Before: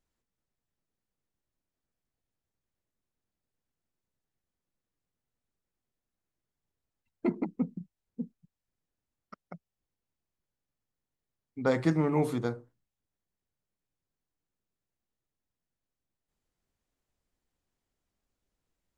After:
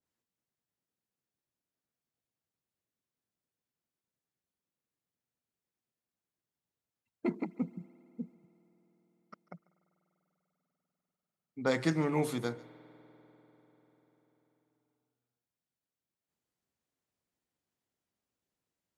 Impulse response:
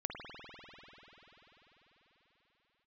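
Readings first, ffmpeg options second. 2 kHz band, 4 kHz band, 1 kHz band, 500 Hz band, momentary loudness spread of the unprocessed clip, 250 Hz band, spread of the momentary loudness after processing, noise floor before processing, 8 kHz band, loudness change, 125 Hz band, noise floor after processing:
+0.5 dB, +4.0 dB, -2.5 dB, -3.5 dB, 21 LU, -3.5 dB, 22 LU, under -85 dBFS, +4.5 dB, -3.5 dB, -4.5 dB, under -85 dBFS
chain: -filter_complex "[0:a]highpass=110,asplit=2[s0][s1];[1:a]atrim=start_sample=2205,highshelf=f=4700:g=9.5,adelay=143[s2];[s1][s2]afir=irnorm=-1:irlink=0,volume=0.075[s3];[s0][s3]amix=inputs=2:normalize=0,adynamicequalizer=threshold=0.00355:dfrequency=1700:dqfactor=0.7:tfrequency=1700:tqfactor=0.7:attack=5:release=100:ratio=0.375:range=4:mode=boostabove:tftype=highshelf,volume=0.668"

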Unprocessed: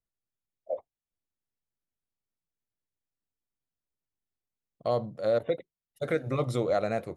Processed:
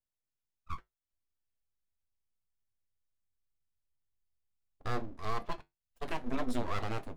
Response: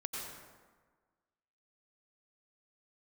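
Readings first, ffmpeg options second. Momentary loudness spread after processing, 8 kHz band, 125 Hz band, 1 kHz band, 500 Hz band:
11 LU, no reading, -7.0 dB, -2.5 dB, -14.5 dB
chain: -af "asubboost=boost=6:cutoff=110,aeval=exprs='abs(val(0))':c=same,flanger=delay=8.1:depth=2.7:regen=-68:speed=0.29:shape=sinusoidal"

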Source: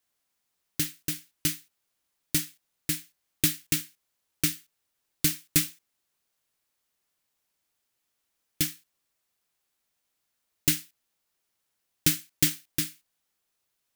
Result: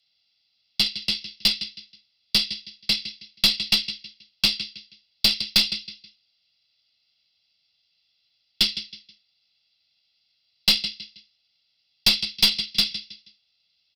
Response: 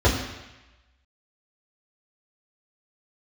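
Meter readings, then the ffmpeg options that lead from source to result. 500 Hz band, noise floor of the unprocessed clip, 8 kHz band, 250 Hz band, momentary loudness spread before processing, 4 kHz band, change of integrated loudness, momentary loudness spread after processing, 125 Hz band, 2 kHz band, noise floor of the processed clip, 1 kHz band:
+1.5 dB, -80 dBFS, -6.0 dB, -2.5 dB, 10 LU, +15.0 dB, +6.0 dB, 15 LU, -6.5 dB, +7.5 dB, -71 dBFS, +9.0 dB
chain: -af "equalizer=f=1000:t=o:w=2.7:g=-6,aresample=11025,aresample=44100,aecho=1:1:1.5:0.75,aecho=1:1:160|320|480:0.2|0.0599|0.018,afreqshift=50,aexciter=amount=8.5:drive=4.3:freq=2400,aeval=exprs='(tanh(3.16*val(0)+0.25)-tanh(0.25))/3.16':c=same"

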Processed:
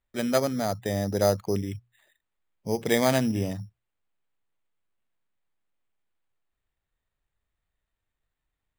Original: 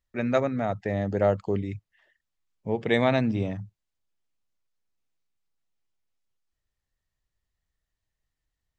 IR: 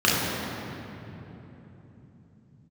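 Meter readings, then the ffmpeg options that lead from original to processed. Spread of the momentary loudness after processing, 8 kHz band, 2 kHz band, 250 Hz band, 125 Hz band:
16 LU, no reading, -1.5 dB, 0.0 dB, -1.0 dB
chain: -af "acrusher=samples=8:mix=1:aa=0.000001,bandreject=f=60:t=h:w=6,bandreject=f=120:t=h:w=6"

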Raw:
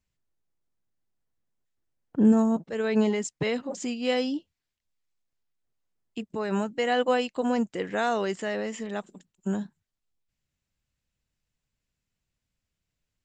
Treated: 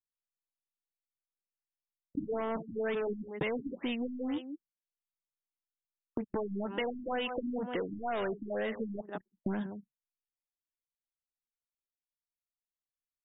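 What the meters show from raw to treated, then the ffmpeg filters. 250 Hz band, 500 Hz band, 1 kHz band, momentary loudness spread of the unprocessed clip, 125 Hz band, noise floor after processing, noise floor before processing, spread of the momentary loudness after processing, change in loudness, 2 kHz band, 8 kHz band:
-10.5 dB, -7.5 dB, -8.5 dB, 13 LU, -9.0 dB, under -85 dBFS, -85 dBFS, 8 LU, -9.0 dB, -7.5 dB, under -35 dB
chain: -filter_complex "[0:a]lowshelf=f=260:g=3.5,agate=range=0.0562:threshold=0.00562:ratio=16:detection=peak,afftfilt=real='re*lt(hypot(re,im),0.891)':imag='im*lt(hypot(re,im),0.891)':win_size=1024:overlap=0.75,bandreject=f=2400:w=18,asplit=2[s0][s1];[s1]adelay=174.9,volume=0.112,highshelf=f=4000:g=-3.94[s2];[s0][s2]amix=inputs=2:normalize=0,acontrast=68,asplit=2[s3][s4];[s4]highpass=f=720:p=1,volume=12.6,asoftclip=type=tanh:threshold=0.398[s5];[s3][s5]amix=inputs=2:normalize=0,lowpass=f=6400:p=1,volume=0.501,anlmdn=25.1,acompressor=threshold=0.0447:ratio=8,highshelf=f=4800:g=7,afftfilt=real='re*lt(b*sr/1024,310*pow(3800/310,0.5+0.5*sin(2*PI*2.1*pts/sr)))':imag='im*lt(b*sr/1024,310*pow(3800/310,0.5+0.5*sin(2*PI*2.1*pts/sr)))':win_size=1024:overlap=0.75,volume=0.562"

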